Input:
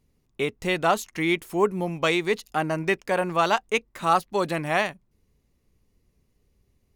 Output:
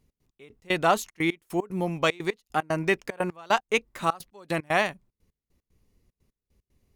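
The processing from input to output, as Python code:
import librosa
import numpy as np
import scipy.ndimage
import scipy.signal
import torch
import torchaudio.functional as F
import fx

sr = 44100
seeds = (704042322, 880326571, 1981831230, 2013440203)

y = fx.step_gate(x, sr, bpm=150, pattern='x.x..x.xxx', floor_db=-24.0, edge_ms=4.5)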